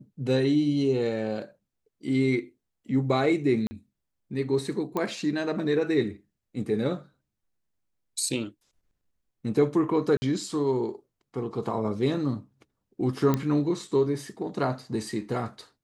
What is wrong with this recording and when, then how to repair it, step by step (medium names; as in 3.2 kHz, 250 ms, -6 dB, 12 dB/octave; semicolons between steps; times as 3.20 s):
3.67–3.71 s: dropout 40 ms
4.97 s: pop -16 dBFS
10.17–10.22 s: dropout 50 ms
13.34 s: pop -12 dBFS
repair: de-click; interpolate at 3.67 s, 40 ms; interpolate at 10.17 s, 50 ms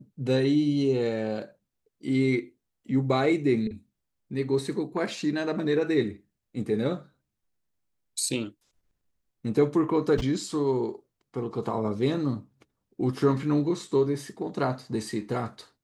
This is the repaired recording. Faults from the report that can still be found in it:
nothing left